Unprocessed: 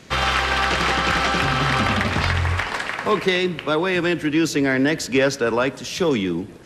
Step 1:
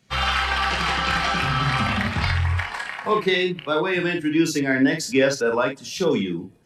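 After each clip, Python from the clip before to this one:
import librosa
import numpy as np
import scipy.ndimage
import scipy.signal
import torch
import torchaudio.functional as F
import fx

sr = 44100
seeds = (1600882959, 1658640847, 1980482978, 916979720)

y = fx.bin_expand(x, sr, power=1.5)
y = fx.room_early_taps(y, sr, ms=(30, 56), db=(-6.5, -6.5))
y = fx.end_taper(y, sr, db_per_s=330.0)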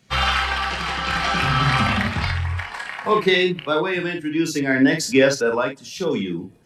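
y = x * (1.0 - 0.51 / 2.0 + 0.51 / 2.0 * np.cos(2.0 * np.pi * 0.59 * (np.arange(len(x)) / sr)))
y = y * 10.0 ** (3.5 / 20.0)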